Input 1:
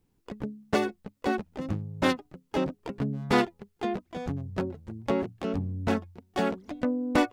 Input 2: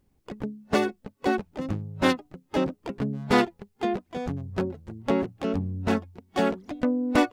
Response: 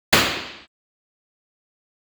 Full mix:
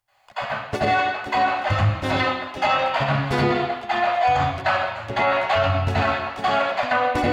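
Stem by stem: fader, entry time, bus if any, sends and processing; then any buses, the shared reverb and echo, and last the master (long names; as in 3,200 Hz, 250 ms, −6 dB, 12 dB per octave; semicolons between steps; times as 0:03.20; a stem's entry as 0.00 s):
+2.5 dB, 0.00 s, send −23.5 dB, low shelf with overshoot 150 Hz +6 dB, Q 3; expander for the loud parts 2.5 to 1, over −37 dBFS
−7.0 dB, 0.00 s, send −4 dB, Butterworth high-pass 650 Hz 48 dB per octave; compressor whose output falls as the input rises −33 dBFS, ratio −0.5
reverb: on, RT60 0.80 s, pre-delay 77 ms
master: brickwall limiter −11 dBFS, peak gain reduction 7.5 dB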